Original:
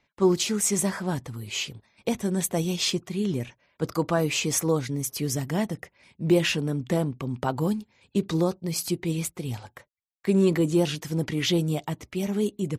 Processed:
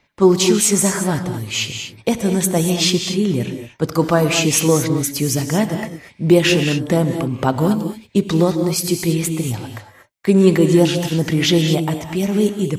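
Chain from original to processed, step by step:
reverb whose tail is shaped and stops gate 260 ms rising, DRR 6.5 dB
level +8.5 dB

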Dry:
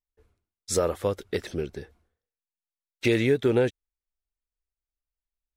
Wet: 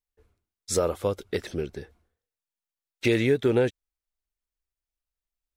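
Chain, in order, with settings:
0:00.79–0:01.28: parametric band 1,800 Hz −9 dB 0.23 octaves

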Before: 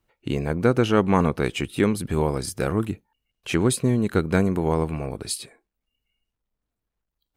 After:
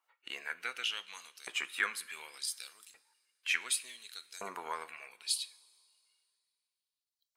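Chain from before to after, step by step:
spectral magnitudes quantised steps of 15 dB
auto-filter high-pass saw up 0.68 Hz 990–5,900 Hz
coupled-rooms reverb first 0.35 s, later 2.4 s, from −17 dB, DRR 12.5 dB
level −5.5 dB

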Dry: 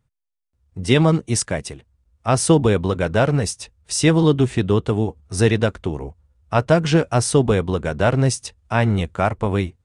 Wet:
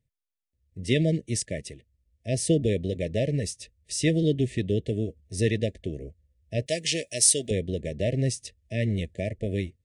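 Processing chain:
linear-phase brick-wall band-stop 670–1,700 Hz
0:06.66–0:07.51: spectral tilt +4.5 dB per octave
level −8 dB

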